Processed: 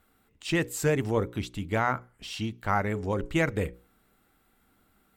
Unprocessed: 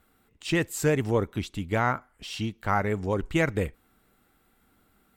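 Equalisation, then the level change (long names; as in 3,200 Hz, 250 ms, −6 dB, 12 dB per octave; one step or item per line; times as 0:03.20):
mains-hum notches 60/120/180/240/300/360/420/480/540 Hz
−1.0 dB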